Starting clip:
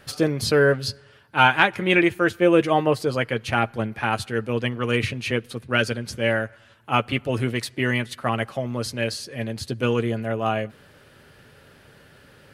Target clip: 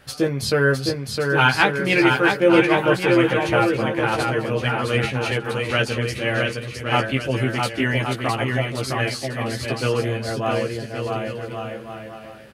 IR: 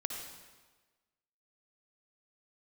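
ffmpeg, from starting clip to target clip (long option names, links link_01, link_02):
-filter_complex "[0:a]asplit=2[link_01][link_02];[link_02]adelay=15,volume=-4dB[link_03];[link_01][link_03]amix=inputs=2:normalize=0,asplit=2[link_04][link_05];[link_05]aecho=0:1:660|1122|1445|1672|1830:0.631|0.398|0.251|0.158|0.1[link_06];[link_04][link_06]amix=inputs=2:normalize=0,volume=-1dB"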